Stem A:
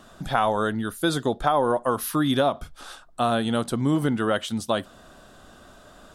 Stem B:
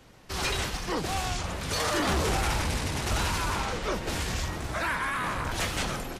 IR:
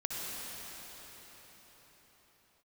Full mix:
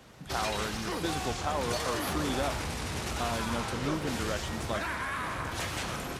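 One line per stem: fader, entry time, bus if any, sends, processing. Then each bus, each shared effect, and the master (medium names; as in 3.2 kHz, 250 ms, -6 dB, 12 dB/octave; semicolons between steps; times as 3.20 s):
-11.5 dB, 0.00 s, no send, none
-2.0 dB, 0.00 s, send -7.5 dB, compression, threshold -32 dBFS, peak gain reduction 8 dB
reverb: on, pre-delay 55 ms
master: high-pass 54 Hz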